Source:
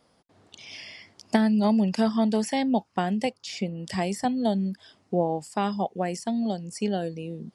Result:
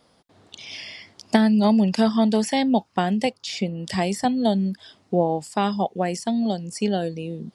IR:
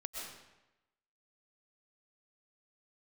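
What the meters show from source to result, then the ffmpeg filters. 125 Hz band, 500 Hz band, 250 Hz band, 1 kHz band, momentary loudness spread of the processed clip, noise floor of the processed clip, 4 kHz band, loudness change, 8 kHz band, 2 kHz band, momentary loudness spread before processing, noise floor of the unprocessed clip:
+4.0 dB, +4.0 dB, +4.0 dB, +4.0 dB, 16 LU, -61 dBFS, +6.0 dB, +4.0 dB, +4.0 dB, +4.5 dB, 17 LU, -65 dBFS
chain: -af "equalizer=f=3.7k:t=o:w=0.49:g=4,volume=4dB"

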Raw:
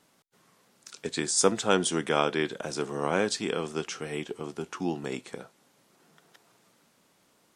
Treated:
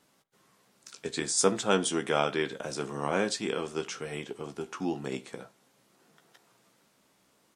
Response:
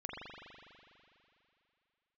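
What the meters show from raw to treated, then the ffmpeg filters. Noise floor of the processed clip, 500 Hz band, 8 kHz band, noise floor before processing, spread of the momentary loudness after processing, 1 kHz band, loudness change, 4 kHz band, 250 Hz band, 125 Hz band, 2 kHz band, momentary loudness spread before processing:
-68 dBFS, -1.5 dB, -2.0 dB, -66 dBFS, 14 LU, -1.5 dB, -1.5 dB, -2.0 dB, -1.5 dB, -2.0 dB, -1.5 dB, 14 LU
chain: -filter_complex "[0:a]asplit=2[a][b];[b]adelay=15,volume=-8dB[c];[a][c]amix=inputs=2:normalize=0,asplit=2[d][e];[1:a]atrim=start_sample=2205,atrim=end_sample=4410[f];[e][f]afir=irnorm=-1:irlink=0,volume=-12dB[g];[d][g]amix=inputs=2:normalize=0,volume=-3.5dB"

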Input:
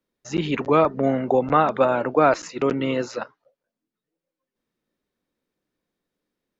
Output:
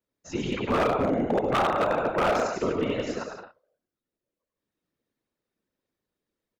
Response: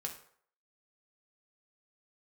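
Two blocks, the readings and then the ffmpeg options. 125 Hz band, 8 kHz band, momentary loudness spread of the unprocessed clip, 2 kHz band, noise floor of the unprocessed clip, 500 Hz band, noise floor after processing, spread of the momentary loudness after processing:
-4.5 dB, n/a, 10 LU, -2.0 dB, under -85 dBFS, -5.0 dB, under -85 dBFS, 11 LU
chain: -af "aecho=1:1:100|170|219|253.3|277.3:0.631|0.398|0.251|0.158|0.1,afftfilt=real='hypot(re,im)*cos(2*PI*random(0))':imag='hypot(re,im)*sin(2*PI*random(1))':win_size=512:overlap=0.75,aeval=exprs='0.141*(abs(mod(val(0)/0.141+3,4)-2)-1)':c=same"

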